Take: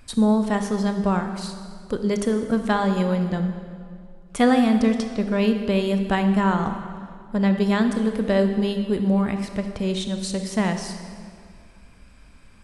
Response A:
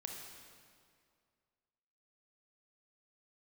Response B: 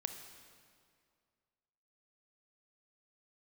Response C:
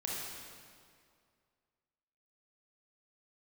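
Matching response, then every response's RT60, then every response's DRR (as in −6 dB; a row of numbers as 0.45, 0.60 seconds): B; 2.2, 2.2, 2.2 seconds; 1.0, 6.5, −4.5 decibels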